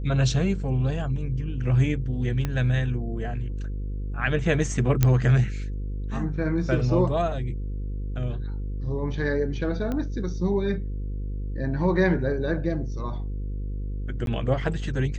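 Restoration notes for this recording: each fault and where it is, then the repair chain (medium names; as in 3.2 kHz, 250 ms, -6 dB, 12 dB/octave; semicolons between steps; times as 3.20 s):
buzz 50 Hz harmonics 10 -30 dBFS
2.45 s: pop -14 dBFS
5.03 s: pop -6 dBFS
9.92 s: pop -18 dBFS
14.26–14.27 s: dropout 12 ms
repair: de-click; de-hum 50 Hz, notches 10; interpolate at 14.26 s, 12 ms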